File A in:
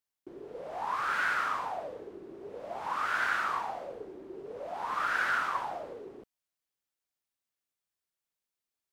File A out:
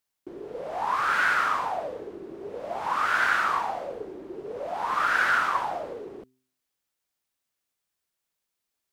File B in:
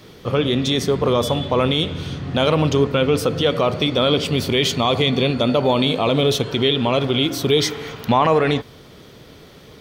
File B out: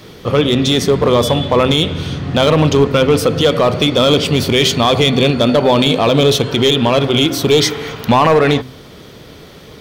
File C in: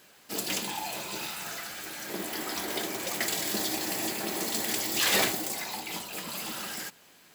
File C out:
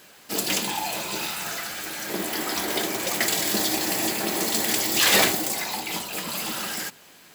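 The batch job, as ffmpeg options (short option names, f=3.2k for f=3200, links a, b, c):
-af "bandreject=f=128.6:t=h:w=4,bandreject=f=257.2:t=h:w=4,bandreject=f=385.8:t=h:w=4,asoftclip=type=hard:threshold=-11dB,volume=6.5dB"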